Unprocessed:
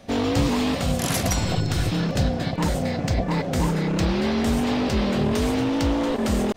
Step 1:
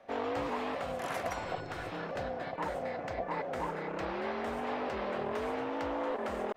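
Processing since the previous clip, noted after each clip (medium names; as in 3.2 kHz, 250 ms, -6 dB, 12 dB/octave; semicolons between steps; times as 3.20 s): three-band isolator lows -20 dB, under 420 Hz, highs -19 dB, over 2.2 kHz; trim -5 dB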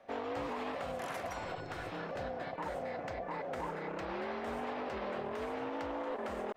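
peak limiter -28 dBFS, peak gain reduction 5.5 dB; trim -2 dB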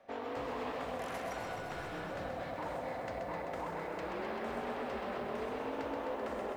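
on a send at -18 dB: reverberation RT60 0.30 s, pre-delay 24 ms; on the sum: bit-crushed delay 129 ms, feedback 80%, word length 11-bit, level -5.5 dB; trim -2.5 dB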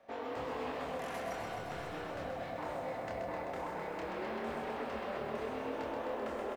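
doubling 27 ms -4.5 dB; trim -1.5 dB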